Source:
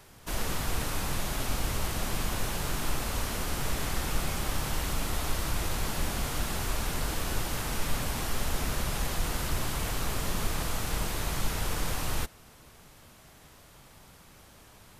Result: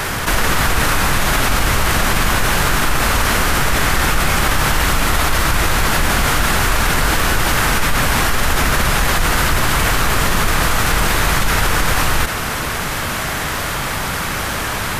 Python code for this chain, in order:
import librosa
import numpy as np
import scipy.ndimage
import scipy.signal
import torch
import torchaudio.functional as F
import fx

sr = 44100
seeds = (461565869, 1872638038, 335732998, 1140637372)

y = fx.peak_eq(x, sr, hz=1600.0, db=8.0, octaves=1.5)
y = fx.env_flatten(y, sr, amount_pct=70)
y = F.gain(torch.from_numpy(y), 9.0).numpy()